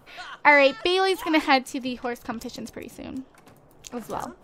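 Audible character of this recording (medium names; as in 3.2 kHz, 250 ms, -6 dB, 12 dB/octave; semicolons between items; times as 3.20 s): noise floor -55 dBFS; spectral tilt -0.5 dB/octave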